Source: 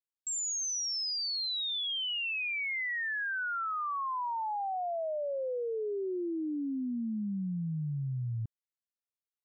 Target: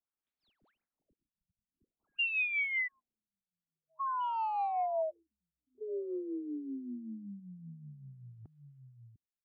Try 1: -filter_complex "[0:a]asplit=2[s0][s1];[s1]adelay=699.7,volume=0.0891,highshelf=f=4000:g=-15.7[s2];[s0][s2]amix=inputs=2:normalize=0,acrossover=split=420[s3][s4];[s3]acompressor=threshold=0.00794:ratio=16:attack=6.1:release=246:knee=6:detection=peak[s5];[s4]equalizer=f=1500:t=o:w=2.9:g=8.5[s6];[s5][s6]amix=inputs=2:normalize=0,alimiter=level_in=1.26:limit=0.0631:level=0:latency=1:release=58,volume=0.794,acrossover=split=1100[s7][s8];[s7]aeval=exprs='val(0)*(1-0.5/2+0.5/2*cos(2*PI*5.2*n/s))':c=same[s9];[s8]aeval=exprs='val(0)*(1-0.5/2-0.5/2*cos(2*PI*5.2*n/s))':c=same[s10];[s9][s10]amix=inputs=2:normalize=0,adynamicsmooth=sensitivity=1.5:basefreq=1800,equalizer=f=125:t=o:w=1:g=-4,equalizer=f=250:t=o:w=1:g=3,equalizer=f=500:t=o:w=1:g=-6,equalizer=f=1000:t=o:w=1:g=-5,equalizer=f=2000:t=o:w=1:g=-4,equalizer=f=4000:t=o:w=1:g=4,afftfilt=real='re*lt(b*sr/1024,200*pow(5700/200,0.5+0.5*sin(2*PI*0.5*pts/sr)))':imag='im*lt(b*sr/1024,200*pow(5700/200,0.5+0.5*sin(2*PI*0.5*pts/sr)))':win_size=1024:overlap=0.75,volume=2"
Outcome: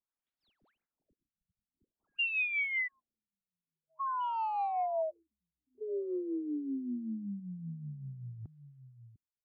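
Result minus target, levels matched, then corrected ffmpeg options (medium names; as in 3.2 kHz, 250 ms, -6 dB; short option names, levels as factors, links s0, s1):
compression: peak gain reduction -7.5 dB
-filter_complex "[0:a]asplit=2[s0][s1];[s1]adelay=699.7,volume=0.0891,highshelf=f=4000:g=-15.7[s2];[s0][s2]amix=inputs=2:normalize=0,acrossover=split=420[s3][s4];[s3]acompressor=threshold=0.00316:ratio=16:attack=6.1:release=246:knee=6:detection=peak[s5];[s4]equalizer=f=1500:t=o:w=2.9:g=8.5[s6];[s5][s6]amix=inputs=2:normalize=0,alimiter=level_in=1.26:limit=0.0631:level=0:latency=1:release=58,volume=0.794,acrossover=split=1100[s7][s8];[s7]aeval=exprs='val(0)*(1-0.5/2+0.5/2*cos(2*PI*5.2*n/s))':c=same[s9];[s8]aeval=exprs='val(0)*(1-0.5/2-0.5/2*cos(2*PI*5.2*n/s))':c=same[s10];[s9][s10]amix=inputs=2:normalize=0,adynamicsmooth=sensitivity=1.5:basefreq=1800,equalizer=f=125:t=o:w=1:g=-4,equalizer=f=250:t=o:w=1:g=3,equalizer=f=500:t=o:w=1:g=-6,equalizer=f=1000:t=o:w=1:g=-5,equalizer=f=2000:t=o:w=1:g=-4,equalizer=f=4000:t=o:w=1:g=4,afftfilt=real='re*lt(b*sr/1024,200*pow(5700/200,0.5+0.5*sin(2*PI*0.5*pts/sr)))':imag='im*lt(b*sr/1024,200*pow(5700/200,0.5+0.5*sin(2*PI*0.5*pts/sr)))':win_size=1024:overlap=0.75,volume=2"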